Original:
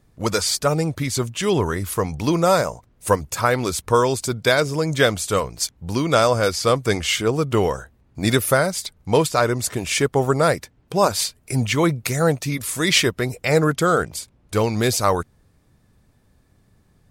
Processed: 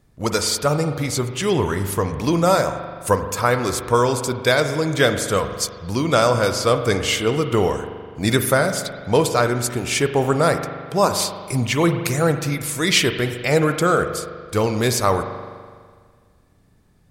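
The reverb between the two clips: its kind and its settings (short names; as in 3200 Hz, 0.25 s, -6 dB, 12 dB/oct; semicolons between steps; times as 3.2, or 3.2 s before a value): spring tank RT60 1.8 s, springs 41 ms, chirp 75 ms, DRR 7.5 dB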